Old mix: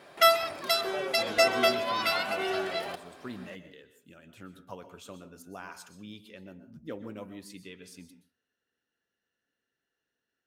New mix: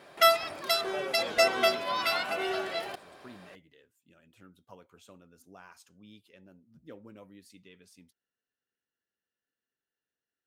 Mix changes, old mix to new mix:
speech -7.0 dB; reverb: off

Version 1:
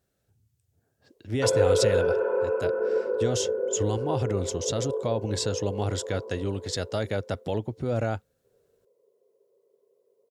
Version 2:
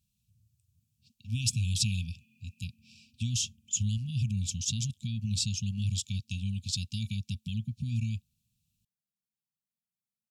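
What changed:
background -9.0 dB; master: add brick-wall FIR band-stop 240–2300 Hz

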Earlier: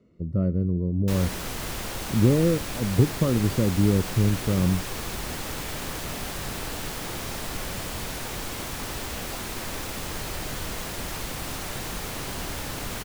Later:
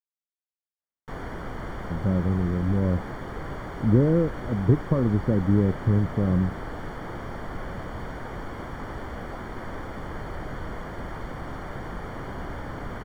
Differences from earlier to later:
speech: entry +1.70 s; master: add polynomial smoothing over 41 samples

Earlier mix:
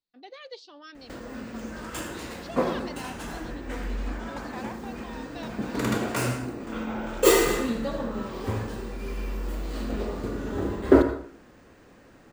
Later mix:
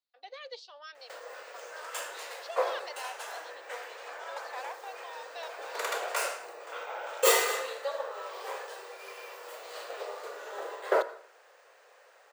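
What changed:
background: send -8.0 dB; master: add steep high-pass 480 Hz 48 dB/oct

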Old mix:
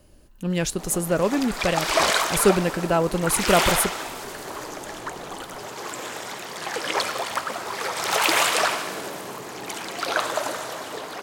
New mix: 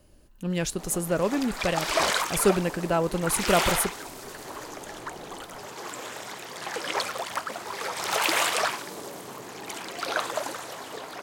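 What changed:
speech -3.5 dB; reverb: off

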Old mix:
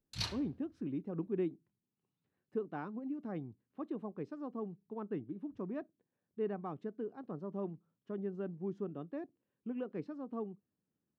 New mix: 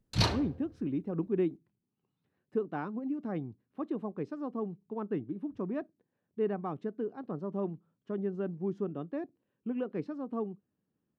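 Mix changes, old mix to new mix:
speech +5.5 dB; background: remove passive tone stack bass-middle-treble 5-5-5

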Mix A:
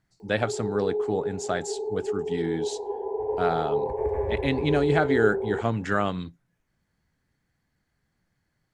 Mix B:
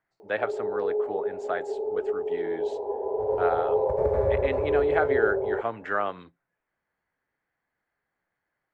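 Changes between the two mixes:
speech: add three-band isolator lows -19 dB, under 390 Hz, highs -22 dB, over 2600 Hz; background: remove fixed phaser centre 880 Hz, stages 8

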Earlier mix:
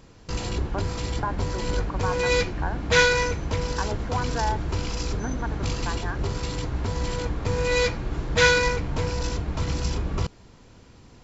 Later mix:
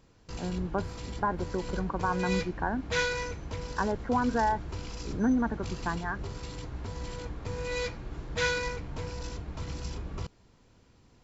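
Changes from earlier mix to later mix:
speech: remove HPF 450 Hz 12 dB/oct; background -10.5 dB

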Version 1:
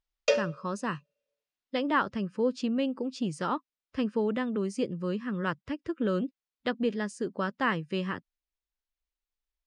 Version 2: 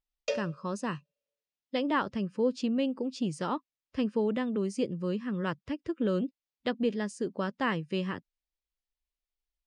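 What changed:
background -6.5 dB; master: add bell 1400 Hz -5 dB 0.86 oct

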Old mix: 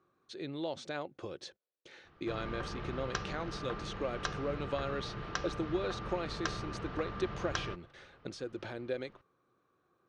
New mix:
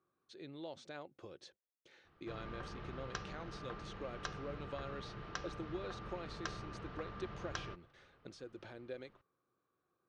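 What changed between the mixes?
speech -9.5 dB; background -6.5 dB

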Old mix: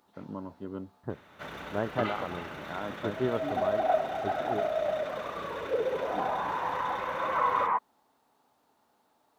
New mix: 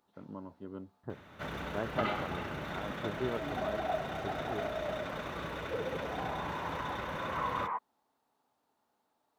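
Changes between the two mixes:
speech -5.5 dB; first sound: add low shelf 220 Hz +9 dB; second sound -8.5 dB

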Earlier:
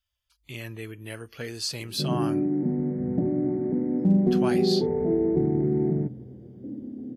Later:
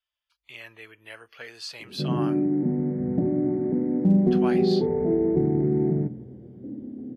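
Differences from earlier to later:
speech: add three-band isolator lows -20 dB, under 560 Hz, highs -13 dB, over 4000 Hz; first sound: send +6.0 dB

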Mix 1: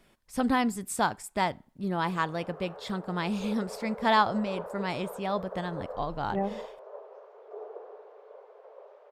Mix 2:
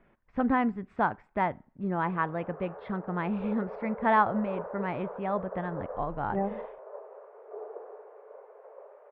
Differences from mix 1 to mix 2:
background: send +9.5 dB; master: add LPF 2100 Hz 24 dB/oct

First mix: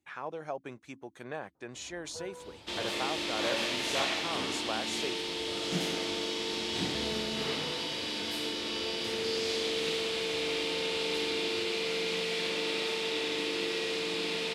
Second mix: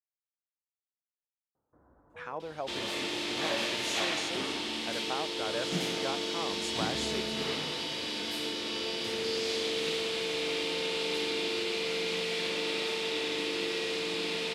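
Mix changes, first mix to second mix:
speech: entry +2.10 s; first sound -5.5 dB

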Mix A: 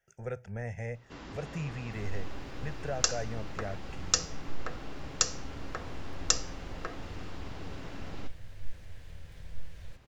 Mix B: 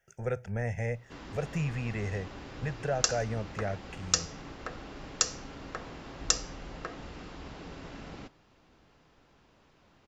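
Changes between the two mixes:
speech +5.0 dB; second sound: muted

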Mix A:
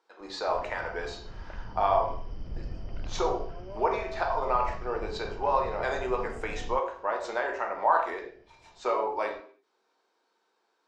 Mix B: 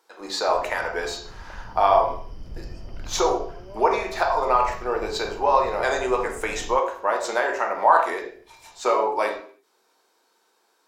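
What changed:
speech +6.5 dB; master: remove air absorption 110 m

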